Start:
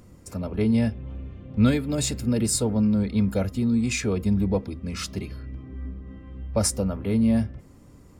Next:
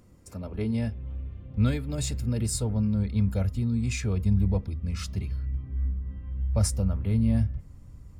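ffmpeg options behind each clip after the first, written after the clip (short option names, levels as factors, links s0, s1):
-af "asubboost=boost=6.5:cutoff=120,volume=0.473"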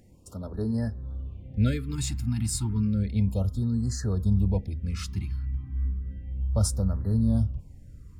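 -af "afftfilt=real='re*(1-between(b*sr/1024,470*pow(2800/470,0.5+0.5*sin(2*PI*0.32*pts/sr))/1.41,470*pow(2800/470,0.5+0.5*sin(2*PI*0.32*pts/sr))*1.41))':imag='im*(1-between(b*sr/1024,470*pow(2800/470,0.5+0.5*sin(2*PI*0.32*pts/sr))/1.41,470*pow(2800/470,0.5+0.5*sin(2*PI*0.32*pts/sr))*1.41))':win_size=1024:overlap=0.75"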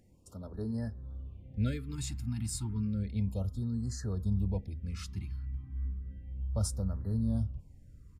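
-af "aresample=32000,aresample=44100,volume=0.422"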